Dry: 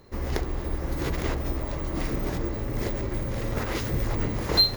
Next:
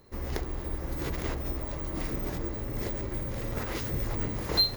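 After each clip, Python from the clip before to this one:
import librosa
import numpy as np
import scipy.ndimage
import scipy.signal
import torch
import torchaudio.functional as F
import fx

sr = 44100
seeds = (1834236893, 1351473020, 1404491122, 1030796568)

y = fx.high_shelf(x, sr, hz=11000.0, db=6.0)
y = F.gain(torch.from_numpy(y), -5.0).numpy()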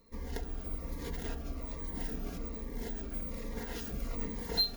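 y = x + 0.75 * np.pad(x, (int(4.3 * sr / 1000.0), 0))[:len(x)]
y = fx.notch_cascade(y, sr, direction='falling', hz=1.2)
y = F.gain(torch.from_numpy(y), -7.0).numpy()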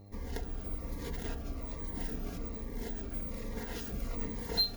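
y = fx.dmg_buzz(x, sr, base_hz=100.0, harmonics=8, level_db=-53.0, tilt_db=-7, odd_only=False)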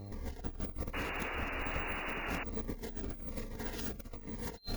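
y = fx.over_compress(x, sr, threshold_db=-42.0, ratio=-0.5)
y = fx.spec_paint(y, sr, seeds[0], shape='noise', start_s=0.93, length_s=1.51, low_hz=240.0, high_hz=2900.0, level_db=-42.0)
y = F.gain(torch.from_numpy(y), 2.0).numpy()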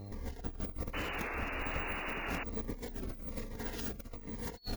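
y = fx.record_warp(x, sr, rpm=33.33, depth_cents=100.0)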